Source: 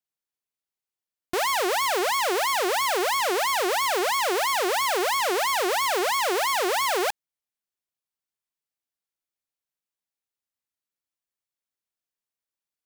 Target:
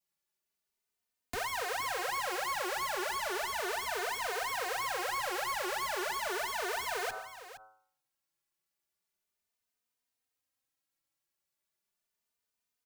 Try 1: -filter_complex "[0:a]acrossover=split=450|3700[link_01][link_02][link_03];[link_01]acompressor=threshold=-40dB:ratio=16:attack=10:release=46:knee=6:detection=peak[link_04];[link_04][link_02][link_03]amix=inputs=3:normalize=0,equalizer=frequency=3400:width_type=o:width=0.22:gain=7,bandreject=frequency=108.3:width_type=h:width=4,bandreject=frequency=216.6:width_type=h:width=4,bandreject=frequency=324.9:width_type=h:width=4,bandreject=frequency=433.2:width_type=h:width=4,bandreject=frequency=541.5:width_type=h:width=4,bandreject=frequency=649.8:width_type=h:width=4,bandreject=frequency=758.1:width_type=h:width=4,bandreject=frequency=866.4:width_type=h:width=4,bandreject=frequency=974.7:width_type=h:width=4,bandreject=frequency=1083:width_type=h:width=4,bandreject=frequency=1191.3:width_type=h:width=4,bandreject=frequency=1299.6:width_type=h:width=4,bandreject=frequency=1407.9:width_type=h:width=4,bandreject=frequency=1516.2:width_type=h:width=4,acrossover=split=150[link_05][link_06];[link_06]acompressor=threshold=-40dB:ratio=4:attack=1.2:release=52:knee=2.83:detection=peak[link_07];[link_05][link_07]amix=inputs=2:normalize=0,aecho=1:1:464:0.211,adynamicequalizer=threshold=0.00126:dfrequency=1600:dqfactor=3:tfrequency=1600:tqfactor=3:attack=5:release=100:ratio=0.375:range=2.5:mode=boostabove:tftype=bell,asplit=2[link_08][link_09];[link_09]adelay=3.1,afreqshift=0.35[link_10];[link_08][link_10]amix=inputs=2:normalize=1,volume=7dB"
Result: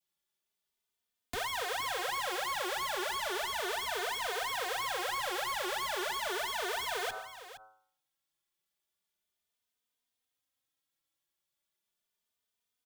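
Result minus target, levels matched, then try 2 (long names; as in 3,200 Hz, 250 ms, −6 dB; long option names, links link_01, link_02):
4,000 Hz band +3.0 dB
-filter_complex "[0:a]acrossover=split=450|3700[link_01][link_02][link_03];[link_01]acompressor=threshold=-40dB:ratio=16:attack=10:release=46:knee=6:detection=peak[link_04];[link_04][link_02][link_03]amix=inputs=3:normalize=0,equalizer=frequency=3400:width_type=o:width=0.22:gain=-2,bandreject=frequency=108.3:width_type=h:width=4,bandreject=frequency=216.6:width_type=h:width=4,bandreject=frequency=324.9:width_type=h:width=4,bandreject=frequency=433.2:width_type=h:width=4,bandreject=frequency=541.5:width_type=h:width=4,bandreject=frequency=649.8:width_type=h:width=4,bandreject=frequency=758.1:width_type=h:width=4,bandreject=frequency=866.4:width_type=h:width=4,bandreject=frequency=974.7:width_type=h:width=4,bandreject=frequency=1083:width_type=h:width=4,bandreject=frequency=1191.3:width_type=h:width=4,bandreject=frequency=1299.6:width_type=h:width=4,bandreject=frequency=1407.9:width_type=h:width=4,bandreject=frequency=1516.2:width_type=h:width=4,acrossover=split=150[link_05][link_06];[link_06]acompressor=threshold=-40dB:ratio=4:attack=1.2:release=52:knee=2.83:detection=peak[link_07];[link_05][link_07]amix=inputs=2:normalize=0,aecho=1:1:464:0.211,adynamicequalizer=threshold=0.00126:dfrequency=1600:dqfactor=3:tfrequency=1600:tqfactor=3:attack=5:release=100:ratio=0.375:range=2.5:mode=boostabove:tftype=bell,asplit=2[link_08][link_09];[link_09]adelay=3.1,afreqshift=0.35[link_10];[link_08][link_10]amix=inputs=2:normalize=1,volume=7dB"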